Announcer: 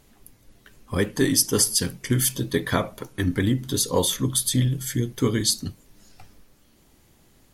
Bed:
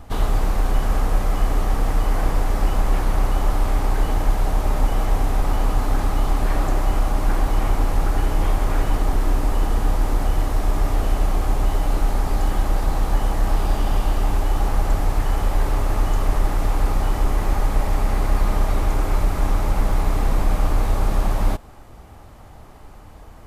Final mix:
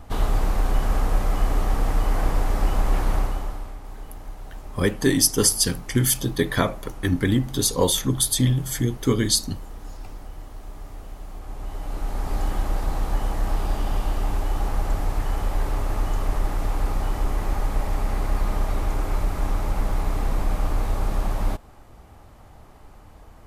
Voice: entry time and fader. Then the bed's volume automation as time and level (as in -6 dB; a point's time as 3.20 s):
3.85 s, +1.5 dB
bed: 3.15 s -2 dB
3.79 s -18.5 dB
11.26 s -18.5 dB
12.36 s -4.5 dB